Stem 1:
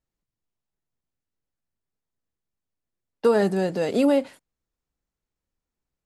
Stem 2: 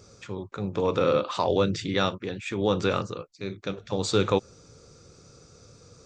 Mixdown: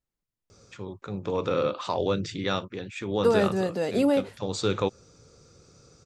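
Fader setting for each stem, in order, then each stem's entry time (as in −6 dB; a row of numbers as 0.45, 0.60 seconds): −3.0, −3.0 decibels; 0.00, 0.50 seconds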